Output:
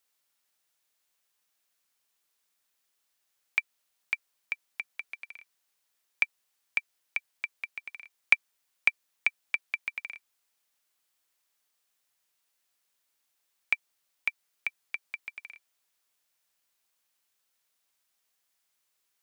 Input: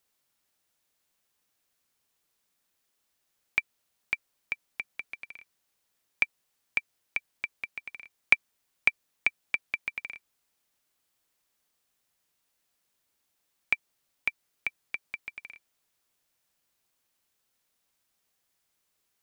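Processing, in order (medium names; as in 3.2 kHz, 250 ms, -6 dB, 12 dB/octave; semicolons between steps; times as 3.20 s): bass shelf 460 Hz -11 dB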